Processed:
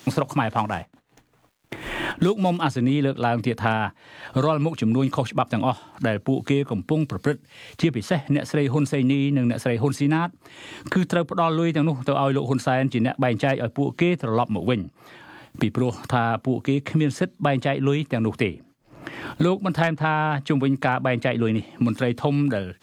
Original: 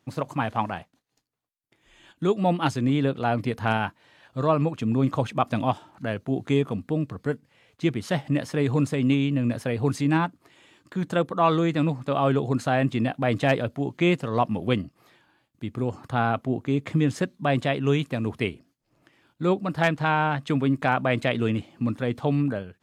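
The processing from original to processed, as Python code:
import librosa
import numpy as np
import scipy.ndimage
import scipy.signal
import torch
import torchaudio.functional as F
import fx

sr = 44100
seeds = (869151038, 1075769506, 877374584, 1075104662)

y = fx.median_filter(x, sr, points=9, at=(0.56, 2.61))
y = fx.band_squash(y, sr, depth_pct=100)
y = F.gain(torch.from_numpy(y), 1.5).numpy()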